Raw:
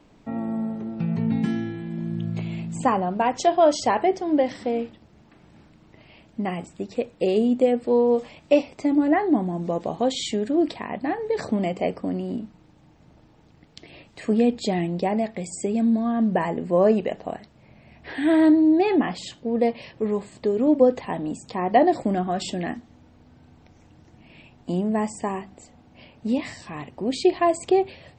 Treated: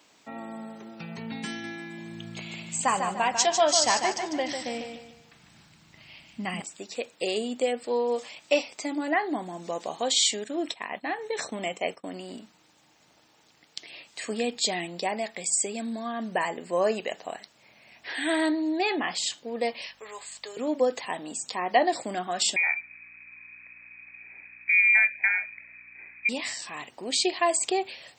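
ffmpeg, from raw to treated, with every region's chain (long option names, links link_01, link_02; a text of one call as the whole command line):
ffmpeg -i in.wav -filter_complex "[0:a]asettb=1/sr,asplit=3[link_01][link_02][link_03];[link_01]atrim=end=1.494[link_04];[link_02]atrim=start=1.49:end=6.62,asetpts=PTS-STARTPTS,afade=type=in:duration=0.004:curve=qsin,afade=type=out:start_time=5.126:duration=0.004:curve=qsin,asubboost=boost=8.5:cutoff=150,aecho=1:1:148|296|444|592:0.473|0.17|0.0613|0.0221,atrim=end_sample=226233[link_05];[link_03]atrim=start=6.616[link_06];[link_04][link_05]acrossfade=duration=0.004:curve1=hsin:curve2=qsin[link_07];[link_07][link_06]acrossfade=duration=0.004:curve1=qsin:curve2=hsin,asettb=1/sr,asplit=3[link_08][link_09][link_10];[link_08]atrim=end=10.444[link_11];[link_09]atrim=start=10.44:end=12.14,asetpts=PTS-STARTPTS,afade=type=in:duration=0.004:curve=qsin,afade=type=out:start_time=1.696:duration=0.004:curve=qsin,asuperstop=centerf=4700:order=20:qfactor=6.8,agate=range=-33dB:threshold=-32dB:ratio=3:release=100:detection=peak[link_12];[link_10]atrim=start=12.136[link_13];[link_11][link_12]acrossfade=duration=0.004:curve1=hsin:curve2=qsin[link_14];[link_14][link_13]acrossfade=duration=0.004:curve1=qsin:curve2=hsin,asettb=1/sr,asplit=3[link_15][link_16][link_17];[link_15]atrim=end=19.874[link_18];[link_16]atrim=start=19.87:end=20.57,asetpts=PTS-STARTPTS,afade=type=in:duration=0.004:curve=qsin,afade=type=out:start_time=0.696:duration=0.004:curve=qsin,highpass=820,aeval=exprs='val(0)+0.00355*(sin(2*PI*50*n/s)+sin(2*PI*2*50*n/s)/2+sin(2*PI*3*50*n/s)/3+sin(2*PI*4*50*n/s)/4+sin(2*PI*5*50*n/s)/5)':channel_layout=same[link_19];[link_17]atrim=start=20.566[link_20];[link_18][link_19]acrossfade=duration=0.004:curve1=hsin:curve2=qsin[link_21];[link_21][link_20]acrossfade=duration=0.004:curve1=qsin:curve2=hsin,asettb=1/sr,asplit=3[link_22][link_23][link_24];[link_22]atrim=end=22.564[link_25];[link_23]atrim=start=22.56:end=26.29,asetpts=PTS-STARTPTS,afade=type=in:duration=0.004:curve=qsin,afade=type=out:start_time=3.726:duration=0.004:curve=qsin,lowpass=frequency=2200:width_type=q:width=0.5098,lowpass=frequency=2200:width_type=q:width=0.6013,lowpass=frequency=2200:width_type=q:width=0.9,lowpass=frequency=2200:width_type=q:width=2.563,afreqshift=-2600,aeval=exprs='val(0)+0.00316*(sin(2*PI*60*n/s)+sin(2*PI*2*60*n/s)/2+sin(2*PI*3*60*n/s)/3+sin(2*PI*4*60*n/s)/4+sin(2*PI*5*60*n/s)/5)':channel_layout=same[link_26];[link_24]atrim=start=26.286[link_27];[link_25][link_26]acrossfade=duration=0.004:curve1=hsin:curve2=qsin[link_28];[link_28][link_27]acrossfade=duration=0.004:curve1=qsin:curve2=hsin,highpass=frequency=1500:poles=1,highshelf=frequency=4500:gain=10.5,volume=3dB" out.wav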